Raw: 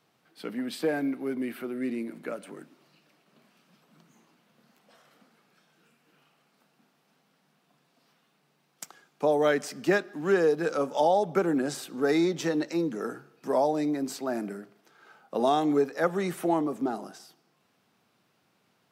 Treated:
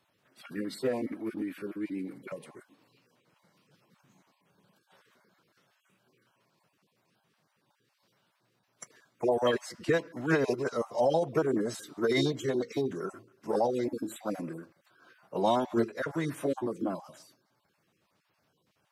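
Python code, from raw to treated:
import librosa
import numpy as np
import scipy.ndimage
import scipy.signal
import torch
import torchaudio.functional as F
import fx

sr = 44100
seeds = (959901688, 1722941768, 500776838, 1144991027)

y = fx.spec_dropout(x, sr, seeds[0], share_pct=24)
y = fx.pitch_keep_formants(y, sr, semitones=-3.5)
y = F.gain(torch.from_numpy(y), -2.0).numpy()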